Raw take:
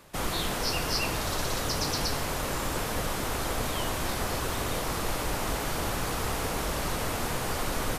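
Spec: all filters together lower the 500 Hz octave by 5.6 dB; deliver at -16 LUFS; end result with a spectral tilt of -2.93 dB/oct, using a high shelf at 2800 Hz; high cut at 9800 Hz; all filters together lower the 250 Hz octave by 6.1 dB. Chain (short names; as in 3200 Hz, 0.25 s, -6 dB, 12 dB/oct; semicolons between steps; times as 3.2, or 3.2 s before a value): LPF 9800 Hz; bell 250 Hz -7 dB; bell 500 Hz -5.5 dB; high shelf 2800 Hz +4.5 dB; gain +13.5 dB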